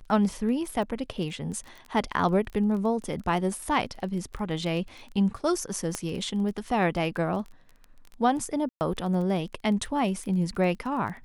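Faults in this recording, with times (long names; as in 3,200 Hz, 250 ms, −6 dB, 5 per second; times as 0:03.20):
surface crackle 15 per second −34 dBFS
0:05.95: click −15 dBFS
0:08.69–0:08.81: drop-out 119 ms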